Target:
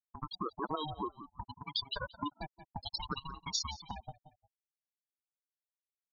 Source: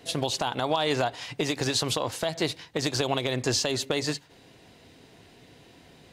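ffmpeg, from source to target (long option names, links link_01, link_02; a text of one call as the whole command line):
ffmpeg -i in.wav -filter_complex "[0:a]aeval=exprs='val(0)*gte(abs(val(0)),0.0376)':channel_layout=same,asplit=3[link_01][link_02][link_03];[link_01]afade=type=out:start_time=1.92:duration=0.02[link_04];[link_02]highshelf=frequency=4400:gain=6,afade=type=in:start_time=1.92:duration=0.02,afade=type=out:start_time=4.01:duration=0.02[link_05];[link_03]afade=type=in:start_time=4.01:duration=0.02[link_06];[link_04][link_05][link_06]amix=inputs=3:normalize=0,afftfilt=real='re*gte(hypot(re,im),0.178)':imag='im*gte(hypot(re,im),0.178)':win_size=1024:overlap=0.75,asplit=2[link_07][link_08];[link_08]adelay=176,lowpass=frequency=4900:poles=1,volume=-20dB,asplit=2[link_09][link_10];[link_10]adelay=176,lowpass=frequency=4900:poles=1,volume=0.24[link_11];[link_07][link_09][link_11]amix=inputs=3:normalize=0,acompressor=threshold=-36dB:ratio=4,highpass=710,aeval=exprs='val(0)*sin(2*PI*440*n/s+440*0.3/0.59*sin(2*PI*0.59*n/s))':channel_layout=same,volume=8dB" out.wav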